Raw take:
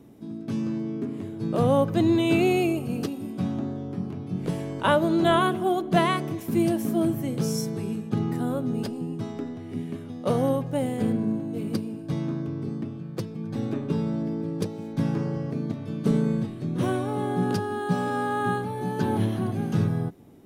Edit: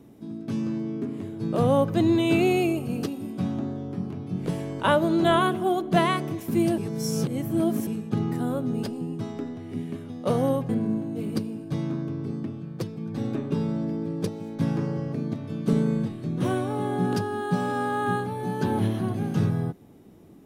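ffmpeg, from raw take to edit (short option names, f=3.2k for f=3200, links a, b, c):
-filter_complex "[0:a]asplit=4[a][b][c][d];[a]atrim=end=6.782[e];[b]atrim=start=6.778:end=7.872,asetpts=PTS-STARTPTS,areverse[f];[c]atrim=start=7.868:end=10.692[g];[d]atrim=start=11.068[h];[e][f]acrossfade=d=0.004:c1=hsin:c2=hsin[i];[i][g]acrossfade=d=0.004:c1=hsin:c2=hsin[j];[j][h]acrossfade=d=0.004:c1=hsin:c2=hsin"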